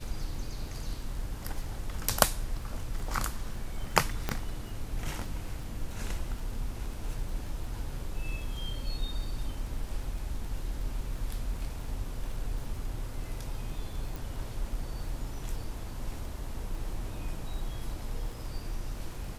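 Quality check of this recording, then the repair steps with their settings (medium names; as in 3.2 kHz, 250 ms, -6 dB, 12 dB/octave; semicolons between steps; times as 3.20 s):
crackle 23 per s -39 dBFS
4.29 s: pop -14 dBFS
14.16 s: pop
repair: de-click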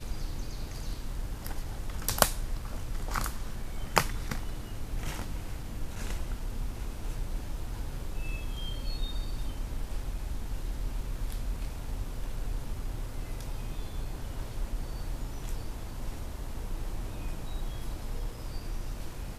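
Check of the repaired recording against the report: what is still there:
nothing left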